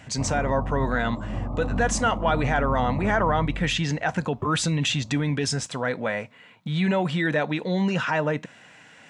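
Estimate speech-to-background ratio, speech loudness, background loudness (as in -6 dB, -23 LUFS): 6.5 dB, -25.0 LUFS, -31.5 LUFS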